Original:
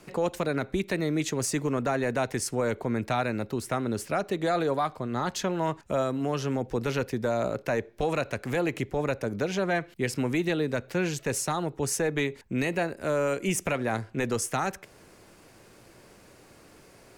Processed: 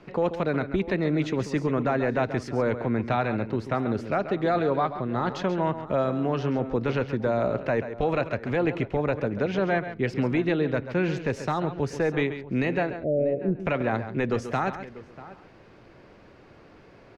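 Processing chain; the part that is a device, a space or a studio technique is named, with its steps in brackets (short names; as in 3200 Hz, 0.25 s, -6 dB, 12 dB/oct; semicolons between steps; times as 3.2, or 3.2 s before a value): 12.9–13.6 steep low-pass 710 Hz 96 dB/oct; shout across a valley (air absorption 250 m; outdoor echo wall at 110 m, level -17 dB); echo 0.136 s -11 dB; gain +3 dB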